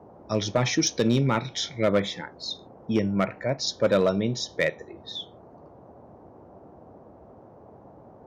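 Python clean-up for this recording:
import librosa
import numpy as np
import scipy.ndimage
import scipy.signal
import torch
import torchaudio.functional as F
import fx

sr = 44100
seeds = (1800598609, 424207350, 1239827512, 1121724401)

y = fx.fix_declip(x, sr, threshold_db=-14.0)
y = fx.noise_reduce(y, sr, print_start_s=7.11, print_end_s=7.61, reduce_db=21.0)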